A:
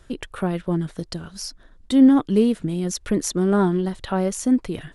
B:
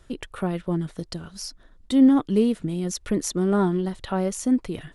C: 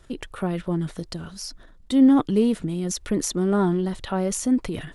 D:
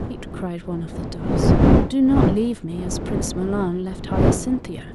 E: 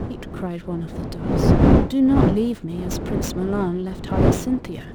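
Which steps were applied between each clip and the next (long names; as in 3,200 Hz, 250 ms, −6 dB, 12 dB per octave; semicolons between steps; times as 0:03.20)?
notch filter 1,600 Hz, Q 21; level −2.5 dB
transient designer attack 0 dB, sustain +6 dB
wind on the microphone 300 Hz −19 dBFS; level −2 dB
windowed peak hold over 3 samples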